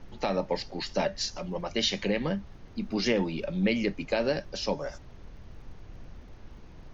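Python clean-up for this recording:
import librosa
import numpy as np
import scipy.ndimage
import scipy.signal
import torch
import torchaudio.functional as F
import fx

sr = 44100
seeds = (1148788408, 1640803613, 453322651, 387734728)

y = fx.fix_declick_ar(x, sr, threshold=6.5)
y = fx.noise_reduce(y, sr, print_start_s=6.35, print_end_s=6.85, reduce_db=28.0)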